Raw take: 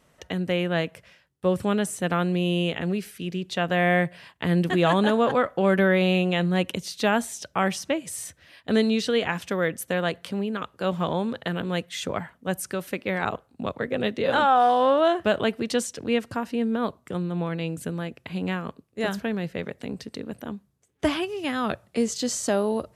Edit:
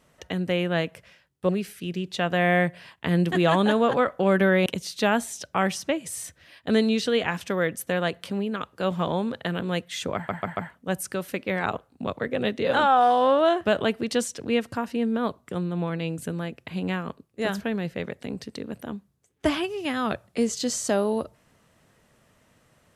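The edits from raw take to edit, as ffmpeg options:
-filter_complex "[0:a]asplit=6[a][b][c][d][e][f];[a]atrim=end=1.492[g];[b]atrim=start=2.868:end=6.042[h];[c]atrim=start=6.668:end=12.302[i];[d]atrim=start=12.158:end=12.302[j];[e]atrim=start=12.158:end=12.302[k];[f]atrim=start=12.158[l];[g][h]acrossfade=d=0.004:c1=hsin:c2=hsin[m];[m][i]acrossfade=d=0.004:c1=hsin:c2=hsin[n];[n][j]acrossfade=d=0.004:c1=hsin:c2=hsin[o];[o][k]acrossfade=d=0.004:c1=hsin:c2=hsin[p];[p][l]acrossfade=d=0.004:c1=hsin:c2=hsin"

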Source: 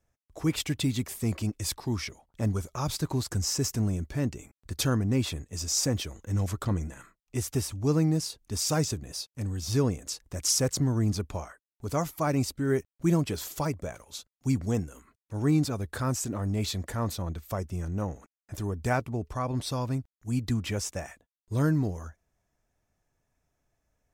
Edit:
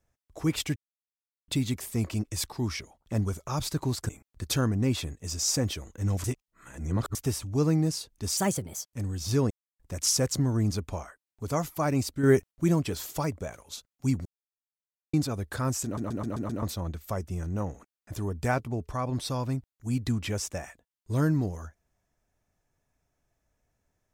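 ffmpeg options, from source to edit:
-filter_complex "[0:a]asplit=19[a][b][c][d][e][f][g][h][i][j][k][l][m][n][o][p][q][r][s];[a]atrim=end=0.76,asetpts=PTS-STARTPTS,afade=t=out:st=0.756:d=0.004:c=hsin,apad=pad_dur=0.72[t];[b]atrim=start=0.76:end=3.372,asetpts=PTS-STARTPTS,afade=t=in:d=0.004:c=hsin[u];[c]atrim=start=4.378:end=6.532[v];[d]atrim=start=6.528:end=7.442,asetpts=PTS-STARTPTS,areverse[w];[e]atrim=start=7.438:end=8.664[x];[f]atrim=start=8.66:end=9.27,asetpts=PTS-STARTPTS,asetrate=55566,aresample=44100[y];[g]atrim=start=9.266:end=9.92,asetpts=PTS-STARTPTS,afade=t=out:st=0.65:d=0.004:c=hsin[z];[h]atrim=start=9.92:end=10.21,asetpts=PTS-STARTPTS,volume=0[aa];[i]atrim=start=10.21:end=12.652,asetpts=PTS-STARTPTS,afade=t=in:d=0.004:c=hsin[ab];[j]atrim=start=12.648:end=12.932,asetpts=PTS-STARTPTS,volume=6dB[ac];[k]atrim=start=12.928:end=14.67,asetpts=PTS-STARTPTS,afade=t=out:st=1.738:d=0.004:c=hsin[ad];[l]atrim=start=14.67:end=15.55,asetpts=PTS-STARTPTS,volume=0[ae];[m]atrim=start=15.55:end=16.392,asetpts=PTS-STARTPTS,afade=t=in:d=0.004:c=hsin[af];[n]atrim=start=16.258:end=16.392[ag];[o]atrim=start=16.258:end=16.392[ah];[p]atrim=start=16.258:end=16.392[ai];[q]atrim=start=16.258:end=16.392[aj];[r]atrim=start=16.258:end=16.392[ak];[s]atrim=start=17.038[al];[t][u]concat=n=2:v=0:a=1[am];[am][v]acrossfade=d=0.004:c1=hsin:c2=hsin[an];[an][w]acrossfade=d=0.004:c1=hsin:c2=hsin[ao];[ao][x]acrossfade=d=0.004:c1=hsin:c2=hsin[ap];[ap][y]acrossfade=d=0.004:c1=hsin:c2=hsin[aq];[z][aa][ab]concat=n=3:v=0:a=1[ar];[aq][ar]acrossfade=d=0.004:c1=hsin:c2=hsin[as];[as][ac]acrossfade=d=0.004:c1=hsin:c2=hsin[at];[ad][ae][af]concat=n=3:v=0:a=1[au];[at][au]acrossfade=d=0.004:c1=hsin:c2=hsin[av];[av][ag]acrossfade=d=0.004:c1=hsin:c2=hsin[aw];[aw][ah]acrossfade=d=0.004:c1=hsin:c2=hsin[ax];[ax][ai]acrossfade=d=0.004:c1=hsin:c2=hsin[ay];[ay][aj]acrossfade=d=0.004:c1=hsin:c2=hsin[az];[az][ak]acrossfade=d=0.004:c1=hsin:c2=hsin[ba];[ba][al]acrossfade=d=0.004:c1=hsin:c2=hsin"

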